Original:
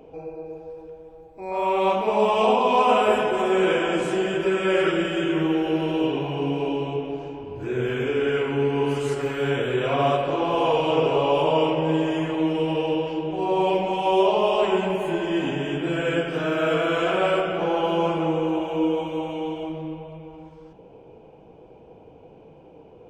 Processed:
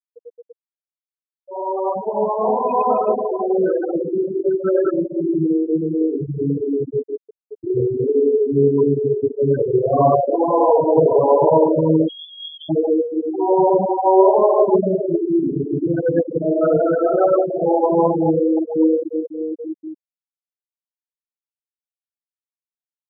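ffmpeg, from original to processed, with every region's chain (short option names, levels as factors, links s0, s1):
-filter_complex "[0:a]asettb=1/sr,asplit=3[s0][s1][s2];[s0]atrim=end=4.244[s3];[s1]atrim=start=4.24:end=6.72,asetpts=PTS-STARTPTS,afade=t=in:d=0.004:c=qsin,afade=t=out:st=2.476:d=0.004:c=qsin,asubboost=boost=3:cutoff=190,highpass=150,lowpass=7000[s4];[s2]atrim=start=6.716[s5];[s3][s4]acrossfade=d=0.004:c1=hsin:c2=qsin[s6];[s6][s5]acrossfade=d=0.004:c1=qsin:c2=hsin,asettb=1/sr,asplit=3[s7][s8][s9];[s7]atrim=end=12.084[s10];[s8]atrim=start=12.08:end=12.69,asetpts=PTS-STARTPTS,afade=t=in:d=0.004:c=qsin,afade=t=out:st=0.606:d=0.004:c=qsin,lowpass=f=3100:t=q:w=0.5098,lowpass=f=3100:t=q:w=0.6013,lowpass=f=3100:t=q:w=0.9,lowpass=f=3100:t=q:w=2.563,afreqshift=-3600,aecho=1:1:5.6:0.66,atrim=end_sample=26901,tremolo=f=43:d=0.571[s11];[s9]atrim=start=12.686[s12];[s10][s11]acrossfade=d=0.004:c1=hsin:c2=qsin[s13];[s13][s12]acrossfade=d=0.004:c1=qsin:c2=hsin,afftfilt=real='re*gte(hypot(re,im),0.251)':imag='im*gte(hypot(re,im),0.251)':win_size=1024:overlap=0.75,lowpass=1400,dynaudnorm=f=440:g=17:m=3.76"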